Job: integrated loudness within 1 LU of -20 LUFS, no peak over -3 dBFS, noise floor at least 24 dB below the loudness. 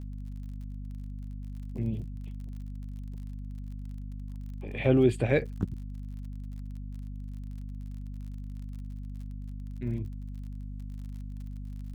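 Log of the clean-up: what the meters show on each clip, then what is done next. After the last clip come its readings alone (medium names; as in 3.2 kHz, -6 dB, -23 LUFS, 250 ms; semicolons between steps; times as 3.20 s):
tick rate 43 per s; hum 50 Hz; highest harmonic 250 Hz; hum level -36 dBFS; loudness -35.0 LUFS; peak level -10.0 dBFS; loudness target -20.0 LUFS
-> de-click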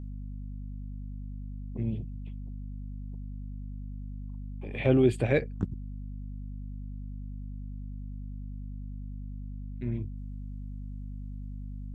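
tick rate 0 per s; hum 50 Hz; highest harmonic 250 Hz; hum level -36 dBFS
-> de-hum 50 Hz, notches 5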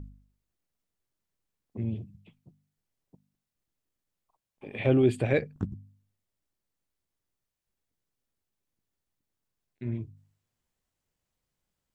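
hum not found; loudness -29.0 LUFS; peak level -11.0 dBFS; loudness target -20.0 LUFS
-> trim +9 dB; peak limiter -3 dBFS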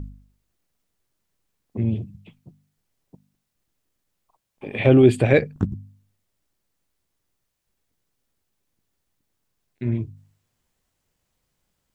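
loudness -20.5 LUFS; peak level -3.0 dBFS; noise floor -77 dBFS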